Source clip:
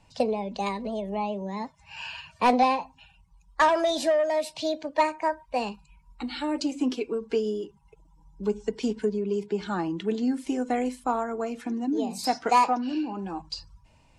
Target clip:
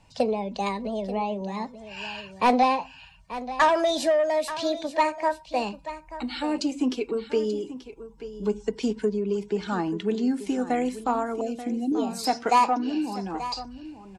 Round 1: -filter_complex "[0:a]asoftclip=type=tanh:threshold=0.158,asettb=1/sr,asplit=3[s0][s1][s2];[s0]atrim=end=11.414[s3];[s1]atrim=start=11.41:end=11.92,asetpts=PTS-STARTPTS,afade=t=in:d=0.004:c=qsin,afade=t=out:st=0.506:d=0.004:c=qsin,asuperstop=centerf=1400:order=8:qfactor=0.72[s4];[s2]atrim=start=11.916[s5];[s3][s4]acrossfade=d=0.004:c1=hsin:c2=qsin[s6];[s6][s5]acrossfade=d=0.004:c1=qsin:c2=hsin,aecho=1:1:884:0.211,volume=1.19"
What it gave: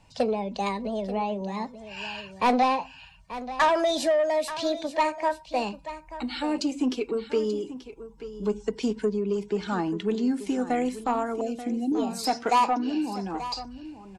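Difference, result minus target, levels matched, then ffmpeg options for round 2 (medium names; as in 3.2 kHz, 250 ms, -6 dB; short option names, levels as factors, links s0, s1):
saturation: distortion +10 dB
-filter_complex "[0:a]asoftclip=type=tanh:threshold=0.335,asettb=1/sr,asplit=3[s0][s1][s2];[s0]atrim=end=11.414[s3];[s1]atrim=start=11.41:end=11.92,asetpts=PTS-STARTPTS,afade=t=in:d=0.004:c=qsin,afade=t=out:st=0.506:d=0.004:c=qsin,asuperstop=centerf=1400:order=8:qfactor=0.72[s4];[s2]atrim=start=11.916[s5];[s3][s4]acrossfade=d=0.004:c1=hsin:c2=qsin[s6];[s6][s5]acrossfade=d=0.004:c1=qsin:c2=hsin,aecho=1:1:884:0.211,volume=1.19"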